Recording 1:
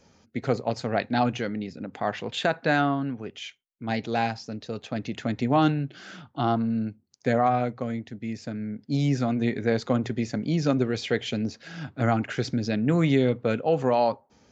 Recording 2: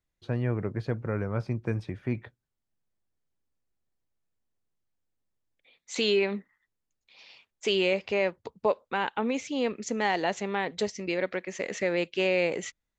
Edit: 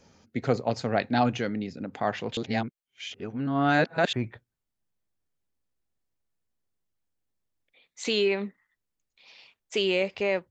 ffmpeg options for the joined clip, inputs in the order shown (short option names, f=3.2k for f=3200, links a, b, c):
-filter_complex "[0:a]apad=whole_dur=10.5,atrim=end=10.5,asplit=2[a][b];[a]atrim=end=2.372[c];[b]atrim=start=2.368:end=4.132,asetpts=PTS-STARTPTS,areverse[d];[1:a]atrim=start=2.038:end=8.41[e];[c][d]acrossfade=d=0.004:c1=hsin:c2=hsin[f];[f][e]acrossfade=d=0.004:c1=hsin:c2=hsin"